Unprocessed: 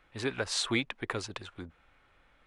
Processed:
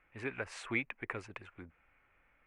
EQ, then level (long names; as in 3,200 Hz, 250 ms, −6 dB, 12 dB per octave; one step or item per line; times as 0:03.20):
high shelf with overshoot 3,000 Hz −8 dB, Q 3
−7.5 dB